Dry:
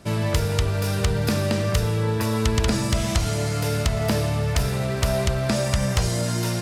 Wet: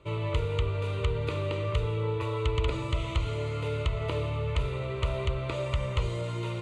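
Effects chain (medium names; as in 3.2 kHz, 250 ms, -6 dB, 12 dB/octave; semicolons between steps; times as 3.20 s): Bessel low-pass 4.4 kHz, order 4; static phaser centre 1.1 kHz, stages 8; trim -4 dB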